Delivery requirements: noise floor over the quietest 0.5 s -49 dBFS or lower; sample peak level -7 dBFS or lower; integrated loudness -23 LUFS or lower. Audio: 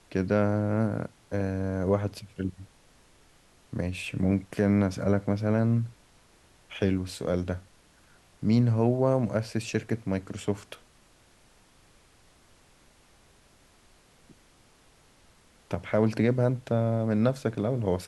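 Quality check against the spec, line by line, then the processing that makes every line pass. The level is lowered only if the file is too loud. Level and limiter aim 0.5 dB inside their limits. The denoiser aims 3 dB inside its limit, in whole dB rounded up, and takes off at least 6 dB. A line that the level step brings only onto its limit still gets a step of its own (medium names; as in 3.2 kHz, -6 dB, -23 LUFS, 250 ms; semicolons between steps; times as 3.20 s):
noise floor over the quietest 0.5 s -60 dBFS: pass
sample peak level -11.0 dBFS: pass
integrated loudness -28.0 LUFS: pass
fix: none needed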